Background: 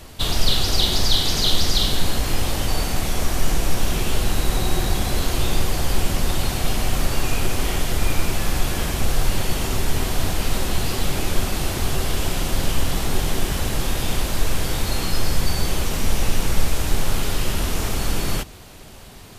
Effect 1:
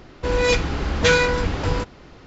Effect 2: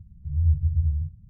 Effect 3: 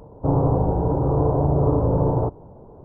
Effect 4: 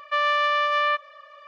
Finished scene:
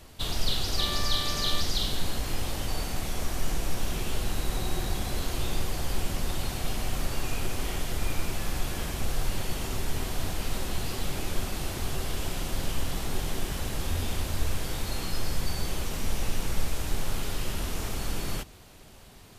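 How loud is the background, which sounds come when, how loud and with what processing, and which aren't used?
background −9 dB
0:00.66: mix in 4 −16.5 dB
0:13.54: mix in 2 −9.5 dB + gain into a clipping stage and back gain 21 dB
not used: 1, 3

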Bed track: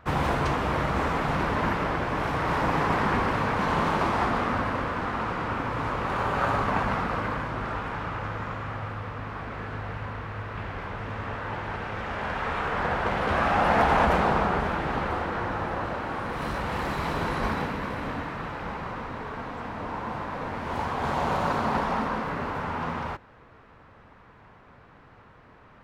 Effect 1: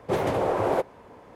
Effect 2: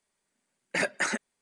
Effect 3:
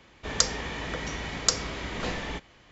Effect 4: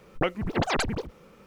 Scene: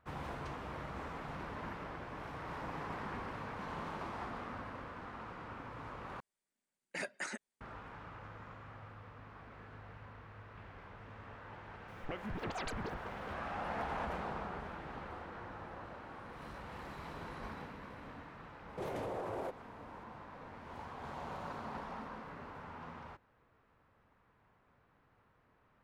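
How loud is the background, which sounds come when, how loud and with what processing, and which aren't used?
bed track −18 dB
0:06.20: overwrite with 2 −13 dB
0:11.88: mix in 4 −5 dB + downward compressor 4 to 1, threshold −34 dBFS
0:18.69: mix in 1 −8.5 dB + brickwall limiter −24 dBFS
not used: 3

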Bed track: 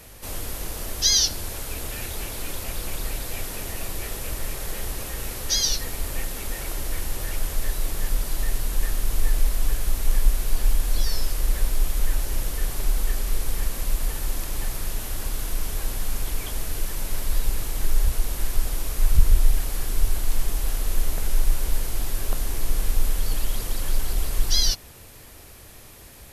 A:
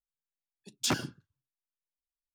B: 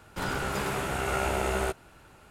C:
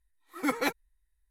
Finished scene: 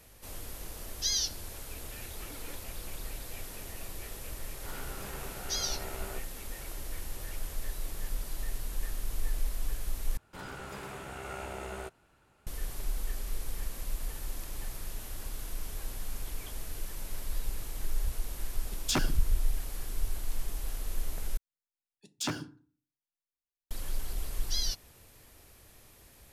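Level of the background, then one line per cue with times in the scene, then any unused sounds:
bed track −11 dB
0:01.87: mix in C −8.5 dB + downward compressor, threshold −41 dBFS
0:04.47: mix in B −14.5 dB
0:10.17: overwrite with B −12 dB
0:18.05: mix in A −0.5 dB
0:21.37: overwrite with A −5 dB + feedback delay network reverb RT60 0.43 s, low-frequency decay 1.25×, high-frequency decay 0.55×, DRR 10 dB

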